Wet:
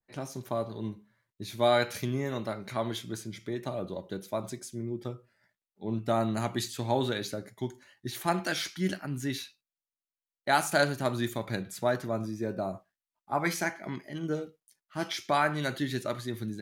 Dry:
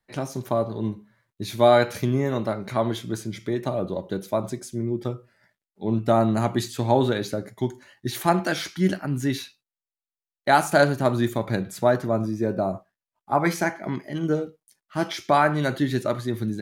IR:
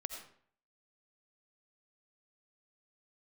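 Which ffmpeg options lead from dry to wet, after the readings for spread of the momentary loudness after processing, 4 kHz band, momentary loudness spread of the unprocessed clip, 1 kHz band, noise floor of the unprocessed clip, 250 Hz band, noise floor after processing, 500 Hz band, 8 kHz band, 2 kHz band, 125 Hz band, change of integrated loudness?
13 LU, -2.5 dB, 12 LU, -7.5 dB, under -85 dBFS, -8.5 dB, under -85 dBFS, -8.5 dB, -2.5 dB, -4.5 dB, -8.5 dB, -7.5 dB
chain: -af "adynamicequalizer=threshold=0.0178:dfrequency=1500:dqfactor=0.7:tfrequency=1500:tqfactor=0.7:attack=5:release=100:ratio=0.375:range=3.5:mode=boostabove:tftype=highshelf,volume=0.376"

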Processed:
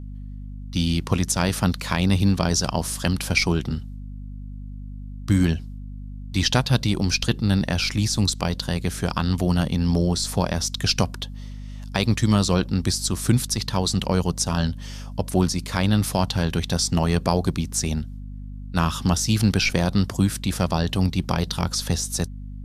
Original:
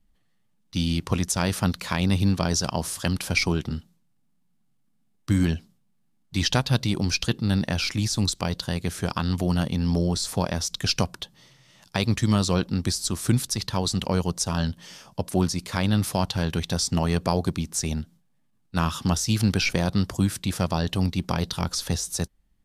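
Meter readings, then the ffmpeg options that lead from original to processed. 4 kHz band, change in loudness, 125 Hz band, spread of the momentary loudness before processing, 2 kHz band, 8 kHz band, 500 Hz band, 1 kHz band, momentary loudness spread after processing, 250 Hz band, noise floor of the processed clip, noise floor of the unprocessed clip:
+2.5 dB, +2.5 dB, +2.5 dB, 7 LU, +2.5 dB, +2.5 dB, +2.5 dB, +2.5 dB, 18 LU, +2.5 dB, -35 dBFS, -67 dBFS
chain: -af "aeval=exprs='val(0)+0.0158*(sin(2*PI*50*n/s)+sin(2*PI*2*50*n/s)/2+sin(2*PI*3*50*n/s)/3+sin(2*PI*4*50*n/s)/4+sin(2*PI*5*50*n/s)/5)':c=same,volume=1.33"

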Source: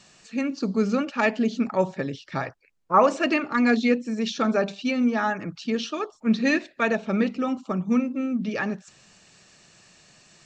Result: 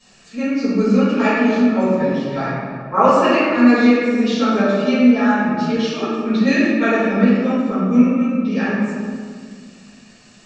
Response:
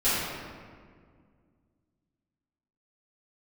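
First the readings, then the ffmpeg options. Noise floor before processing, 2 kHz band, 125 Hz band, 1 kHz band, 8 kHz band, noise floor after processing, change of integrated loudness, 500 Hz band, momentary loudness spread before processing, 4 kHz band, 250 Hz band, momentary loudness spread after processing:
-59 dBFS, +6.0 dB, +9.5 dB, +6.5 dB, no reading, -47 dBFS, +8.0 dB, +7.5 dB, 10 LU, +5.5 dB, +9.5 dB, 10 LU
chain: -filter_complex "[1:a]atrim=start_sample=2205[s0];[0:a][s0]afir=irnorm=-1:irlink=0,volume=0.422"

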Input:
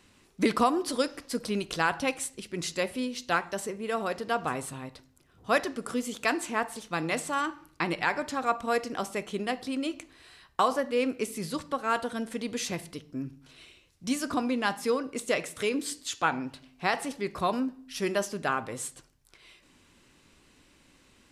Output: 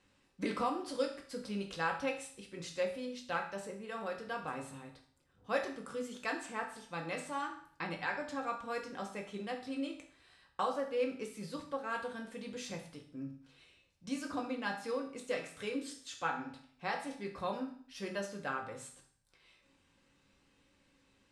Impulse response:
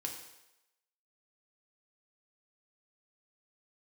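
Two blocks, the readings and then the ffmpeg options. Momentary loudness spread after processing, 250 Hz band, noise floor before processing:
10 LU, -9.5 dB, -62 dBFS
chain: -filter_complex "[0:a]lowpass=11000,highshelf=f=7300:g=-7.5[s0];[1:a]atrim=start_sample=2205,asetrate=74970,aresample=44100[s1];[s0][s1]afir=irnorm=-1:irlink=0,volume=0.631"

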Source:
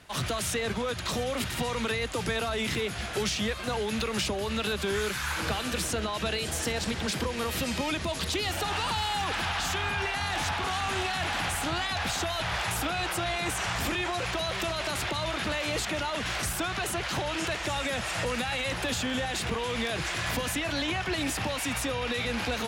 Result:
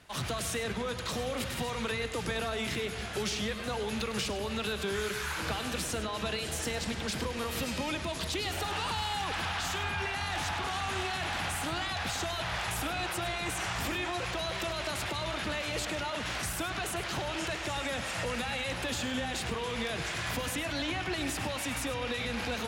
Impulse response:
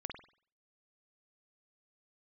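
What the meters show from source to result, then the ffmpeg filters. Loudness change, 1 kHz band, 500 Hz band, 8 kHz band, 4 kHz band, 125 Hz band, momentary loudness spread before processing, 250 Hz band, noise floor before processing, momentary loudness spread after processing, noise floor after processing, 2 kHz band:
-3.5 dB, -3.5 dB, -3.5 dB, -3.5 dB, -3.5 dB, -3.5 dB, 2 LU, -3.5 dB, -34 dBFS, 2 LU, -37 dBFS, -3.5 dB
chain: -filter_complex "[0:a]asplit=2[s0][s1];[1:a]atrim=start_sample=2205,adelay=102[s2];[s1][s2]afir=irnorm=-1:irlink=0,volume=0.422[s3];[s0][s3]amix=inputs=2:normalize=0,volume=0.631"

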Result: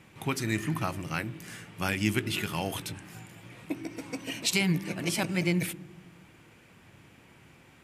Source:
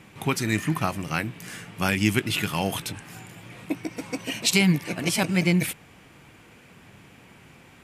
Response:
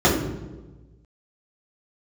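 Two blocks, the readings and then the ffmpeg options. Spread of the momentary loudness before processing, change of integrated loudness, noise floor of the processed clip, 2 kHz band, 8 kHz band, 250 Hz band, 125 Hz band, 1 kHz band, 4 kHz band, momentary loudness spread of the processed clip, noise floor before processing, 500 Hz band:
18 LU, -5.5 dB, -57 dBFS, -5.5 dB, -5.5 dB, -6.0 dB, -5.5 dB, -6.0 dB, -5.5 dB, 16 LU, -52 dBFS, -5.0 dB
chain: -filter_complex "[0:a]asplit=2[s0][s1];[1:a]atrim=start_sample=2205[s2];[s1][s2]afir=irnorm=-1:irlink=0,volume=0.0112[s3];[s0][s3]amix=inputs=2:normalize=0,volume=0.531"

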